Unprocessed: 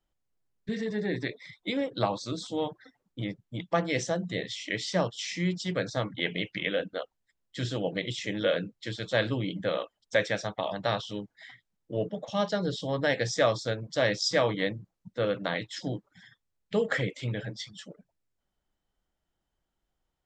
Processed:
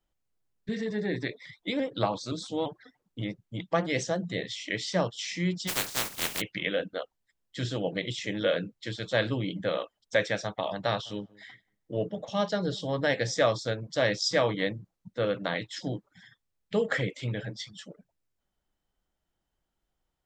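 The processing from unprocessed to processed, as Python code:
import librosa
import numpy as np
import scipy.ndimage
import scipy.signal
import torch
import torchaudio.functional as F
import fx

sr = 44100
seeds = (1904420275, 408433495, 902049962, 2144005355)

y = fx.vibrato_shape(x, sr, shape='saw_up', rate_hz=5.8, depth_cents=100.0, at=(1.45, 4.33))
y = fx.spec_flatten(y, sr, power=0.12, at=(5.67, 6.4), fade=0.02)
y = fx.echo_filtered(y, sr, ms=183, feedback_pct=22, hz=960.0, wet_db=-23, at=(11.05, 13.43), fade=0.02)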